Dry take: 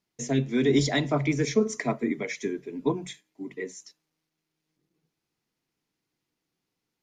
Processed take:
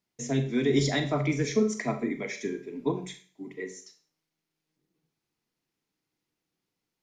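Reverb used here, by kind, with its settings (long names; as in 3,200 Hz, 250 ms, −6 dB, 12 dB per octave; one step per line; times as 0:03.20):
four-comb reverb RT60 0.4 s, combs from 29 ms, DRR 7.5 dB
level −2.5 dB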